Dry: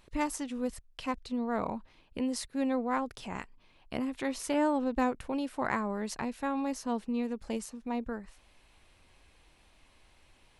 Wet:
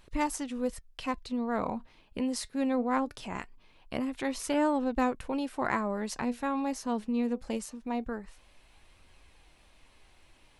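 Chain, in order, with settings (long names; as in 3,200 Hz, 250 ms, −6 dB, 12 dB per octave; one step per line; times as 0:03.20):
flanger 0.22 Hz, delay 0.6 ms, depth 4.5 ms, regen +83%
level +6 dB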